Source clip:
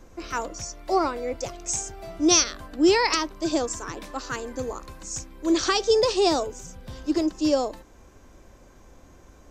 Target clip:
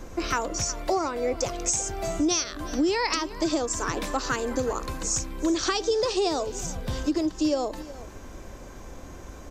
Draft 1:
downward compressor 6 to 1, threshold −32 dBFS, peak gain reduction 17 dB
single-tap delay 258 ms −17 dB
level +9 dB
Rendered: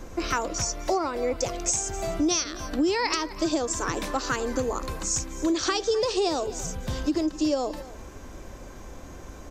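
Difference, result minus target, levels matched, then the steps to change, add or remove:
echo 110 ms early
change: single-tap delay 368 ms −17 dB

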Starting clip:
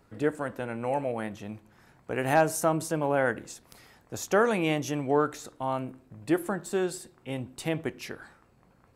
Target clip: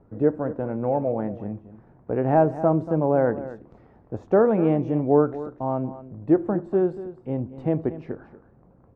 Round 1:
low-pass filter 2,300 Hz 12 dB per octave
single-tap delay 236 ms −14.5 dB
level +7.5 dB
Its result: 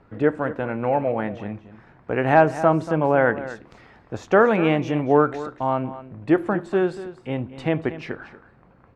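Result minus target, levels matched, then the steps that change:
2,000 Hz band +12.5 dB
change: low-pass filter 670 Hz 12 dB per octave

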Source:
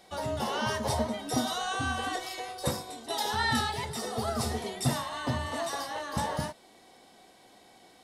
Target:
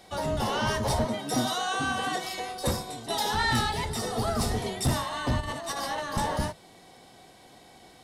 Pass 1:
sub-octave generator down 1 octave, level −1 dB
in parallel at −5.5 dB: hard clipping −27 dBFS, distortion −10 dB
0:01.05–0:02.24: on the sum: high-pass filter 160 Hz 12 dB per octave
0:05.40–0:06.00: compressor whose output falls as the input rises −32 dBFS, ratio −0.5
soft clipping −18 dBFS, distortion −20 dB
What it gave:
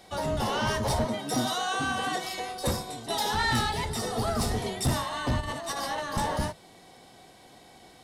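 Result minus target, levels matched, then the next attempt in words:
hard clipping: distortion +17 dB
sub-octave generator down 1 octave, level −1 dB
in parallel at −5.5 dB: hard clipping −17.5 dBFS, distortion −27 dB
0:01.05–0:02.24: on the sum: high-pass filter 160 Hz 12 dB per octave
0:05.40–0:06.00: compressor whose output falls as the input rises −32 dBFS, ratio −0.5
soft clipping −18 dBFS, distortion −17 dB

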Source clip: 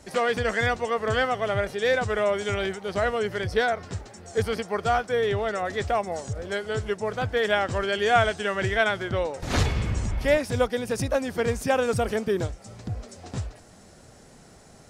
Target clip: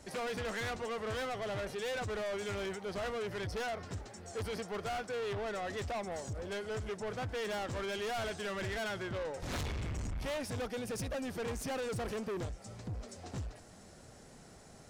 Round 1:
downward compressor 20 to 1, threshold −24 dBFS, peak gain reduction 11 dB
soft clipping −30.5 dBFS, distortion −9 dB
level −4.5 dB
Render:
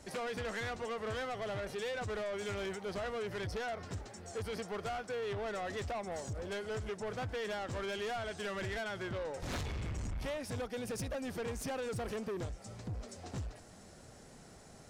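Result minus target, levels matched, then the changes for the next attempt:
downward compressor: peak gain reduction +11 dB
remove: downward compressor 20 to 1, threshold −24 dBFS, peak gain reduction 11 dB

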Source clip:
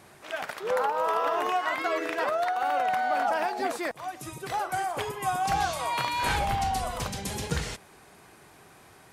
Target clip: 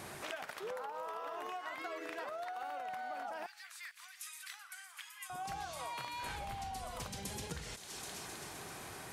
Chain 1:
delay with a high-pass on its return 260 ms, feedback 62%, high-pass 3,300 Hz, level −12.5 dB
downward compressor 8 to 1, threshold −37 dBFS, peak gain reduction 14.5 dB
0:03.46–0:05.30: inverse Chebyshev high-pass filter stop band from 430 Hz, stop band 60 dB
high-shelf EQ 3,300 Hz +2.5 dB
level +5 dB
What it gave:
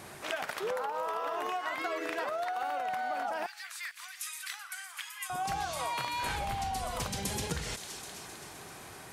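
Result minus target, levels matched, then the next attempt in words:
downward compressor: peak gain reduction −8.5 dB
delay with a high-pass on its return 260 ms, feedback 62%, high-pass 3,300 Hz, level −12.5 dB
downward compressor 8 to 1, threshold −46.5 dBFS, peak gain reduction 22.5 dB
0:03.46–0:05.30: inverse Chebyshev high-pass filter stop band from 430 Hz, stop band 60 dB
high-shelf EQ 3,300 Hz +2.5 dB
level +5 dB

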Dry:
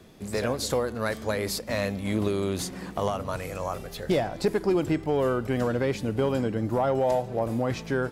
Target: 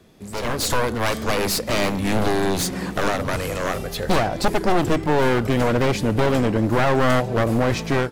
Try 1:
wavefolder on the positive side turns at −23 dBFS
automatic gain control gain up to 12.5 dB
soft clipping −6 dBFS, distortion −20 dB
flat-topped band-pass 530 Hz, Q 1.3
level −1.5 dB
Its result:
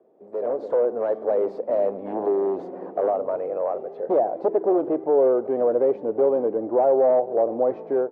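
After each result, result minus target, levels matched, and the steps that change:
wavefolder on the positive side: distortion −9 dB; 500 Hz band +4.5 dB
change: wavefolder on the positive side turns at −29.5 dBFS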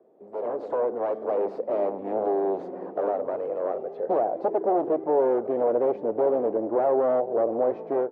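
500 Hz band +4.0 dB
remove: flat-topped band-pass 530 Hz, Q 1.3

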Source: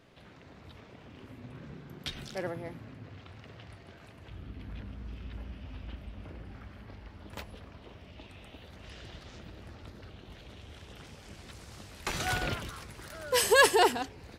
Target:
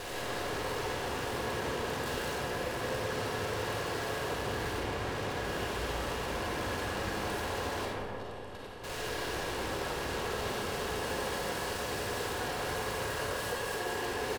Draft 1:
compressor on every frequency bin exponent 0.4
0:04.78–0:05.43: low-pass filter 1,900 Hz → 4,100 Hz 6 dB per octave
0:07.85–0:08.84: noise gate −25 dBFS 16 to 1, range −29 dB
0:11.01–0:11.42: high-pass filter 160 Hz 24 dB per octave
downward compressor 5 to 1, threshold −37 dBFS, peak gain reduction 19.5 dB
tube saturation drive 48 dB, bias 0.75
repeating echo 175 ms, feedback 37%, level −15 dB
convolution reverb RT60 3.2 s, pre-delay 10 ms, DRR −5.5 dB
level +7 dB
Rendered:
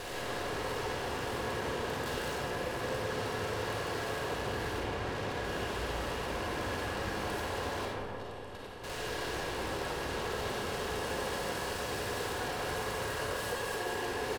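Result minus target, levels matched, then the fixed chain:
downward compressor: peak gain reduction +5.5 dB
compressor on every frequency bin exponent 0.4
0:04.78–0:05.43: low-pass filter 1,900 Hz → 4,100 Hz 6 dB per octave
0:07.85–0:08.84: noise gate −25 dBFS 16 to 1, range −29 dB
0:11.01–0:11.42: high-pass filter 160 Hz 24 dB per octave
downward compressor 5 to 1, threshold −30 dBFS, peak gain reduction 14 dB
tube saturation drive 48 dB, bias 0.75
repeating echo 175 ms, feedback 37%, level −15 dB
convolution reverb RT60 3.2 s, pre-delay 10 ms, DRR −5.5 dB
level +7 dB

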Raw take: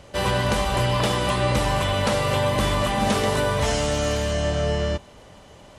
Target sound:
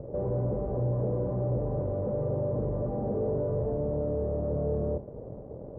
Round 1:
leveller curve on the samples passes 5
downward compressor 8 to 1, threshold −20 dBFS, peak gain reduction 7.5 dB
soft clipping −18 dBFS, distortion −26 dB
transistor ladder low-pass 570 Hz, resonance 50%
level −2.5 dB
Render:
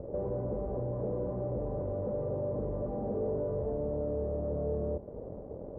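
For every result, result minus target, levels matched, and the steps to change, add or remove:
downward compressor: peak gain reduction +7.5 dB; 125 Hz band −3.0 dB
remove: downward compressor 8 to 1, threshold −20 dBFS, peak gain reduction 7.5 dB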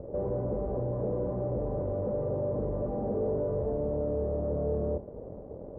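125 Hz band −3.0 dB
add after transistor ladder low-pass: parametric band 130 Hz +7 dB 0.53 octaves

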